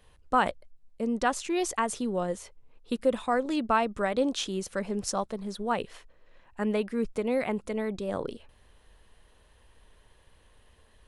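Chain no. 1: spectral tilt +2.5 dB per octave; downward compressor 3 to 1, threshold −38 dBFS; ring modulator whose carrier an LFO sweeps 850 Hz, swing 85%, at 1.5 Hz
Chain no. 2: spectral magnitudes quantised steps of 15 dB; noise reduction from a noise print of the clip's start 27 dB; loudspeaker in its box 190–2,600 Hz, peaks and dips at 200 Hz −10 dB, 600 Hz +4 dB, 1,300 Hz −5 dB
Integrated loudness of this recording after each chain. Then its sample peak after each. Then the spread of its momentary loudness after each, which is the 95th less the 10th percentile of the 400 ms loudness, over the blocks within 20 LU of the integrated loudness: −42.5, −32.5 LKFS; −20.5, −12.0 dBFS; 10, 10 LU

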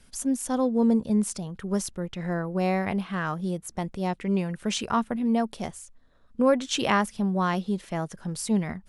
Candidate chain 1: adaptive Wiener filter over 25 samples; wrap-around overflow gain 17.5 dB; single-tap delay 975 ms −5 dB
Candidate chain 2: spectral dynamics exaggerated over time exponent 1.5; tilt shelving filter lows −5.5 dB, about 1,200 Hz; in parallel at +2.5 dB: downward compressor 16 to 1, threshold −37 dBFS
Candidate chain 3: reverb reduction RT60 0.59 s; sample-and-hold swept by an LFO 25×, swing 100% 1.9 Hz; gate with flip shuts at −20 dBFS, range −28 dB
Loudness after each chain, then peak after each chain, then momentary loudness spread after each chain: −27.0, −29.0, −36.5 LKFS; −13.5, −8.0, −16.0 dBFS; 7, 9, 12 LU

